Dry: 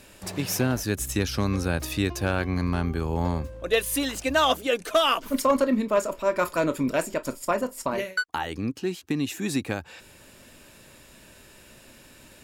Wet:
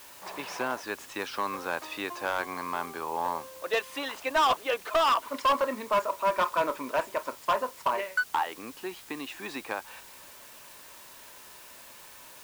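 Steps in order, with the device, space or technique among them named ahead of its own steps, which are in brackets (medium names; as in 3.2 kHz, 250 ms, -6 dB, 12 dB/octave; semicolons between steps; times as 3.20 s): drive-through speaker (band-pass 520–3300 Hz; peaking EQ 1 kHz +10 dB 0.55 oct; hard clipper -17.5 dBFS, distortion -10 dB; white noise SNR 19 dB); trim -2 dB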